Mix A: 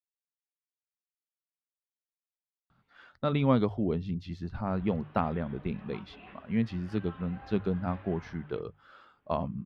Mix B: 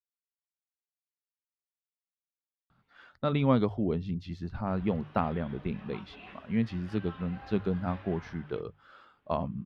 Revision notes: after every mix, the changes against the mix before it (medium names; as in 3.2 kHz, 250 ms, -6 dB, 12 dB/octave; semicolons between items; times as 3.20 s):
background: remove distance through air 260 m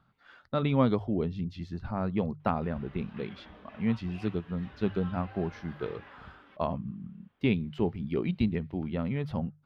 speech: entry -2.70 s; background: entry -2.05 s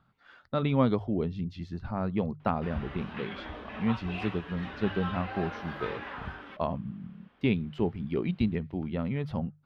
background +11.0 dB; master: add peaking EQ 13 kHz -3.5 dB 0.97 oct